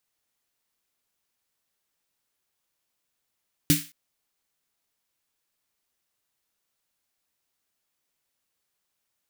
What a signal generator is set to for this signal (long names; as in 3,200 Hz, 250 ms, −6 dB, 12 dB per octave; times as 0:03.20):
synth snare length 0.22 s, tones 160 Hz, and 290 Hz, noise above 1,700 Hz, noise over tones −2.5 dB, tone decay 0.22 s, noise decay 0.34 s